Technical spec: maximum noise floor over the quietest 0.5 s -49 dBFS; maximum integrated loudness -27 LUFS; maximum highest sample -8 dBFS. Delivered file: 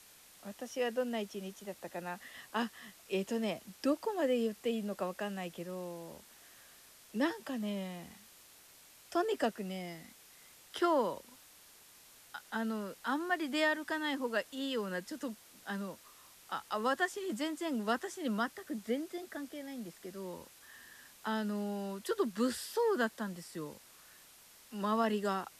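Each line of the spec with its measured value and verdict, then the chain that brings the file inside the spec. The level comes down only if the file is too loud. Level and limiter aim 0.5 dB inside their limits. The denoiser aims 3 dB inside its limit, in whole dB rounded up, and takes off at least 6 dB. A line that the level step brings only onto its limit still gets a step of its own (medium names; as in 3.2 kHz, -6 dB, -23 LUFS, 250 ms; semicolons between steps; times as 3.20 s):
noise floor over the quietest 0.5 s -59 dBFS: pass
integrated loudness -36.5 LUFS: pass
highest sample -20.0 dBFS: pass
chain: none needed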